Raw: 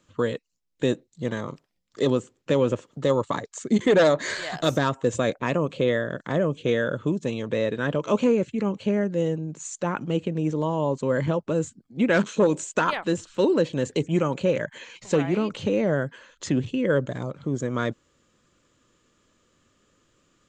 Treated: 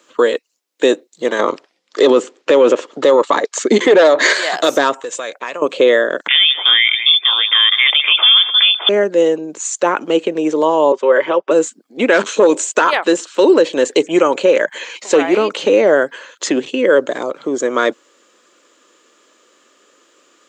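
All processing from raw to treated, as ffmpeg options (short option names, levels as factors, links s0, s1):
-filter_complex "[0:a]asettb=1/sr,asplit=3[s0][s1][s2];[s0]atrim=end=1.394[s3];[s1]atrim=start=1.39:end=4.33,asetpts=PTS-STARTPTS,afade=t=in:d=0.004:c=qsin,afade=t=out:st=2.936:d=0.004:c=qsin,lowpass=5700,acontrast=68[s4];[s2]atrim=start=4.326[s5];[s3][s4]acrossfade=d=0.004:c1=hsin:c2=qsin[s6];[s6][s5]acrossfade=d=0.004:c1=qsin:c2=hsin,asettb=1/sr,asplit=3[s7][s8][s9];[s7]atrim=end=5.004[s10];[s8]atrim=start=5:end=5.62,asetpts=PTS-STARTPTS,afade=t=in:d=0.004:c=qsin,afade=t=out:st=0.616:d=0.004:c=qsin,equalizer=f=300:t=o:w=2.2:g=-11.5,acompressor=threshold=0.0178:ratio=3:attack=3.2:release=140:knee=1:detection=peak[s11];[s9]atrim=start=5.616[s12];[s10][s11]acrossfade=d=0.004:c1=hsin:c2=qsin[s13];[s13][s12]acrossfade=d=0.004:c1=qsin:c2=hsin,asettb=1/sr,asplit=3[s14][s15][s16];[s14]atrim=end=6.284[s17];[s15]atrim=start=6.28:end=8.89,asetpts=PTS-STARTPTS,afade=t=in:d=0.004:c=qsin,afade=t=out:st=2.606:d=0.004:c=qsin,equalizer=f=1400:t=o:w=1.3:g=10,aecho=1:1:198:0.119,atrim=end_sample=115101,lowpass=f=3100:t=q:w=0.5098,lowpass=f=3100:t=q:w=0.6013,lowpass=f=3100:t=q:w=0.9,lowpass=f=3100:t=q:w=2.563,afreqshift=-3700[s18];[s16]atrim=start=8.886[s19];[s17][s18]acrossfade=d=0.004:c1=hsin:c2=qsin[s20];[s20][s19]acrossfade=d=0.004:c1=qsin:c2=hsin,asettb=1/sr,asplit=3[s21][s22][s23];[s21]atrim=end=10.924[s24];[s22]atrim=start=10.92:end=11.51,asetpts=PTS-STARTPTS,afade=t=in:d=0.004:c=qsin,afade=t=out:st=0.586:d=0.004:c=qsin,asuperstop=centerf=4200:order=4:qfactor=6.8,acrossover=split=350 4300:gain=0.224 1 0.0708[s25][s26][s27];[s25][s26][s27]amix=inputs=3:normalize=0,aecho=1:1:5.3:0.5,atrim=end_sample=26019[s28];[s23]atrim=start=11.506[s29];[s24][s28]acrossfade=d=0.004:c1=hsin:c2=qsin[s30];[s30][s29]acrossfade=d=0.004:c1=qsin:c2=hsin,highpass=f=330:w=0.5412,highpass=f=330:w=1.3066,alimiter=level_in=5.62:limit=0.891:release=50:level=0:latency=1,volume=0.891"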